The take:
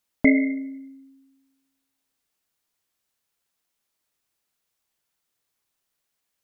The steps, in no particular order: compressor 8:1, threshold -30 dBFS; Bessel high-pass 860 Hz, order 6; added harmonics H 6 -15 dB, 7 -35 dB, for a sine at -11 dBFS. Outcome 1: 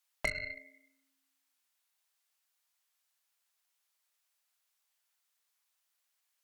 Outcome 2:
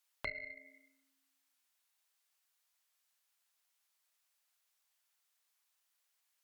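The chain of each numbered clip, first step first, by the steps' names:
Bessel high-pass > added harmonics > compressor; compressor > Bessel high-pass > added harmonics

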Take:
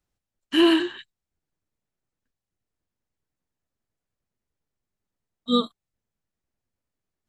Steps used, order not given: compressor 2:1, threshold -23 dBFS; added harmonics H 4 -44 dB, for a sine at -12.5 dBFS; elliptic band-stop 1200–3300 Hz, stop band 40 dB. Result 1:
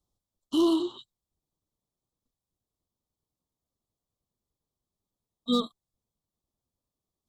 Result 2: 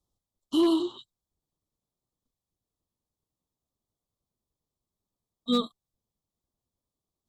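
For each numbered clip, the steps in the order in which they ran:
added harmonics > compressor > elliptic band-stop; elliptic band-stop > added harmonics > compressor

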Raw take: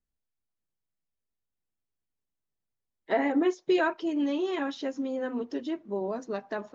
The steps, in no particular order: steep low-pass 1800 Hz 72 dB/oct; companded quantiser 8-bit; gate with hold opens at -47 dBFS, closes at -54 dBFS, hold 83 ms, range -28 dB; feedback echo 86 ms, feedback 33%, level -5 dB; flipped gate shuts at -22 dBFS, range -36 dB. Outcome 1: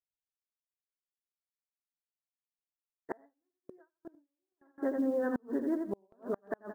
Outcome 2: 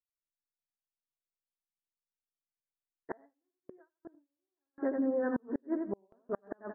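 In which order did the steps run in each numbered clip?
steep low-pass > companded quantiser > feedback echo > flipped gate > gate with hold; feedback echo > companded quantiser > flipped gate > steep low-pass > gate with hold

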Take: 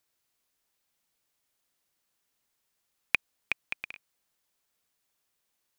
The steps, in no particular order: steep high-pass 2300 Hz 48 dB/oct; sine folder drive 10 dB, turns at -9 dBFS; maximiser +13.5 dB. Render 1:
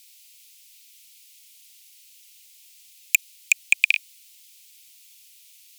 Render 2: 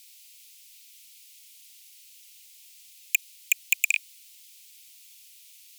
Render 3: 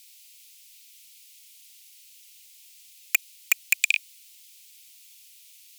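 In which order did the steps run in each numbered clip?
sine folder > steep high-pass > maximiser; maximiser > sine folder > steep high-pass; steep high-pass > maximiser > sine folder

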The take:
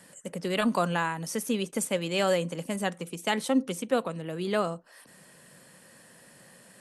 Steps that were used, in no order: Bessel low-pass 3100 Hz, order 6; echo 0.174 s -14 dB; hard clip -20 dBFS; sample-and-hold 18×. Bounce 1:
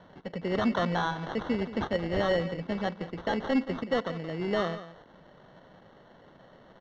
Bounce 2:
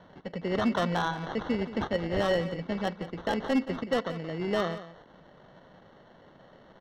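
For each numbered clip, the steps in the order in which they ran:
hard clip > echo > sample-and-hold > Bessel low-pass; sample-and-hold > Bessel low-pass > hard clip > echo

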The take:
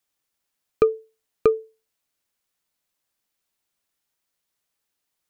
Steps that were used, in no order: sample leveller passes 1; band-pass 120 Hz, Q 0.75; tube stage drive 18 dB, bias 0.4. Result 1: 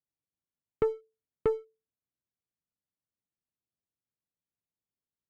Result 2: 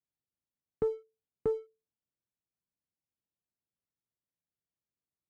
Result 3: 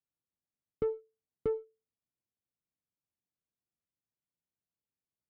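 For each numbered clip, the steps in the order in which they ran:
band-pass > sample leveller > tube stage; tube stage > band-pass > sample leveller; sample leveller > tube stage > band-pass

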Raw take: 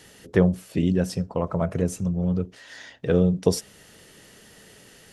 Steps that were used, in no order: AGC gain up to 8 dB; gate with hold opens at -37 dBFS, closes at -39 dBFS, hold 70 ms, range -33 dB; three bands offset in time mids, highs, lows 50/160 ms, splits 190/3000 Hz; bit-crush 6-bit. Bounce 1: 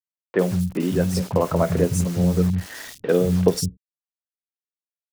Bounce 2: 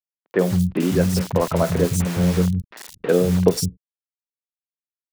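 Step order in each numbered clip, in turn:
gate with hold > AGC > bit-crush > three bands offset in time; bit-crush > gate with hold > three bands offset in time > AGC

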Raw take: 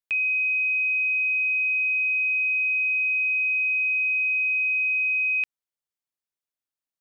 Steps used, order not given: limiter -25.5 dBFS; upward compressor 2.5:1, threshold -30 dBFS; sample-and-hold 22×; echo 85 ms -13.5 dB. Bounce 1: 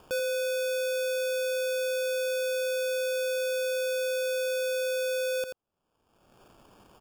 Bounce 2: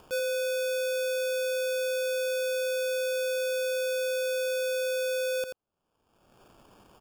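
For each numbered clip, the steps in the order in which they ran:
upward compressor > sample-and-hold > echo > limiter; sample-and-hold > echo > upward compressor > limiter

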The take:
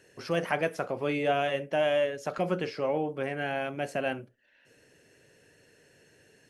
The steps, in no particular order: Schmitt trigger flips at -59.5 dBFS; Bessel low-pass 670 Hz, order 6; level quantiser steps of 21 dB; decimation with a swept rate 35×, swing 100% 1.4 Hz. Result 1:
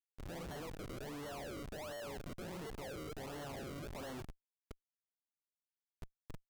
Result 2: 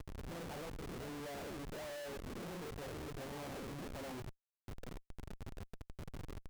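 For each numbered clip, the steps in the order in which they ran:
Bessel low-pass > level quantiser > decimation with a swept rate > Schmitt trigger; decimation with a swept rate > Bessel low-pass > level quantiser > Schmitt trigger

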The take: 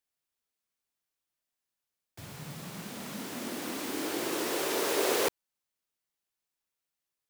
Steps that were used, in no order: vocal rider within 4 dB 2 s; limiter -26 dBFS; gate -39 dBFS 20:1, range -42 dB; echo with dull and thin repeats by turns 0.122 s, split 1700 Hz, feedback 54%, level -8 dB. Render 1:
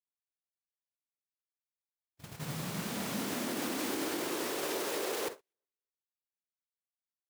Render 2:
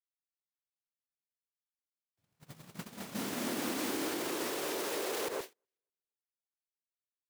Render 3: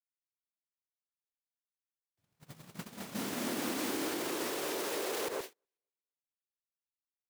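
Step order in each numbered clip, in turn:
vocal rider > limiter > echo with dull and thin repeats by turns > gate; echo with dull and thin repeats by turns > limiter > gate > vocal rider; echo with dull and thin repeats by turns > gate > limiter > vocal rider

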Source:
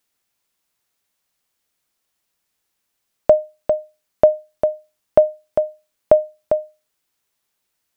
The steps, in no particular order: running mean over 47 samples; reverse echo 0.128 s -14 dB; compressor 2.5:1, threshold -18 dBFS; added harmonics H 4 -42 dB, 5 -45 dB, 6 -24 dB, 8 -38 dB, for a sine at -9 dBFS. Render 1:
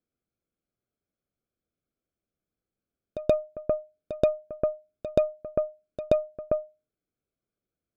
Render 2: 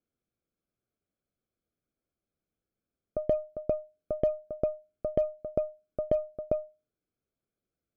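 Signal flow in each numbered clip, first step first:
running mean > added harmonics > compressor > reverse echo; reverse echo > added harmonics > compressor > running mean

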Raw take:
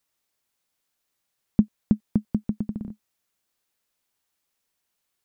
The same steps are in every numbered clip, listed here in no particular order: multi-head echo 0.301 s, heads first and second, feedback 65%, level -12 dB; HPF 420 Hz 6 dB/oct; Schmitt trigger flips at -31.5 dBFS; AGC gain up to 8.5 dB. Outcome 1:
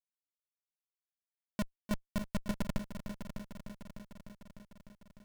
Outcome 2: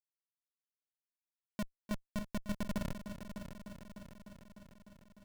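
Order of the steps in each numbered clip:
HPF > Schmitt trigger > AGC > multi-head echo; AGC > HPF > Schmitt trigger > multi-head echo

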